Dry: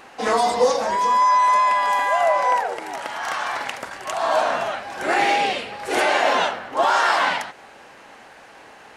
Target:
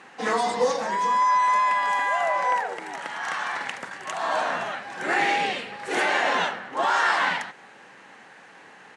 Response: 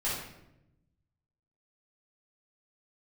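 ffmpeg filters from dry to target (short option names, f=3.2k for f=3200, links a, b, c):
-filter_complex "[0:a]highpass=f=110:w=0.5412,highpass=f=110:w=1.3066,equalizer=f=180:t=q:w=4:g=6,equalizer=f=630:t=q:w=4:g=-5,equalizer=f=1.8k:t=q:w=4:g=5,equalizer=f=5k:t=q:w=4:g=-3,lowpass=f=9.6k:w=0.5412,lowpass=f=9.6k:w=1.3066,asplit=2[a][b];[b]adelay=130,highpass=300,lowpass=3.4k,asoftclip=type=hard:threshold=-14.5dB,volume=-28dB[c];[a][c]amix=inputs=2:normalize=0,volume=-4dB"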